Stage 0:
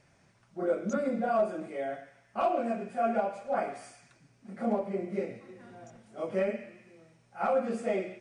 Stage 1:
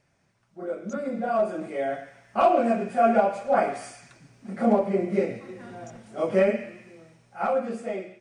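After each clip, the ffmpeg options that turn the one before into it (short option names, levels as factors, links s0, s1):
-af "dynaudnorm=f=340:g=9:m=5.31,volume=0.596"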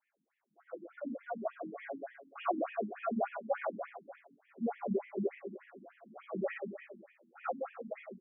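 -filter_complex "[0:a]flanger=delay=19:depth=2.4:speed=0.34,asplit=2[s0][s1];[s1]aecho=0:1:70|157.5|266.9|403.6|574.5:0.631|0.398|0.251|0.158|0.1[s2];[s0][s2]amix=inputs=2:normalize=0,afftfilt=real='re*between(b*sr/1024,220*pow(2500/220,0.5+0.5*sin(2*PI*3.4*pts/sr))/1.41,220*pow(2500/220,0.5+0.5*sin(2*PI*3.4*pts/sr))*1.41)':imag='im*between(b*sr/1024,220*pow(2500/220,0.5+0.5*sin(2*PI*3.4*pts/sr))/1.41,220*pow(2500/220,0.5+0.5*sin(2*PI*3.4*pts/sr))*1.41)':win_size=1024:overlap=0.75,volume=0.562"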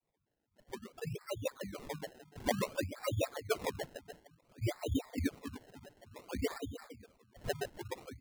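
-af "adynamicequalizer=threshold=0.00282:dfrequency=1600:dqfactor=1.3:tfrequency=1600:tqfactor=1.3:attack=5:release=100:ratio=0.375:range=2.5:mode=cutabove:tftype=bell,highpass=f=160:t=q:w=0.5412,highpass=f=160:t=q:w=1.307,lowpass=f=3000:t=q:w=0.5176,lowpass=f=3000:t=q:w=0.7071,lowpass=f=3000:t=q:w=1.932,afreqshift=-120,acrusher=samples=26:mix=1:aa=0.000001:lfo=1:lforange=26:lforate=0.56"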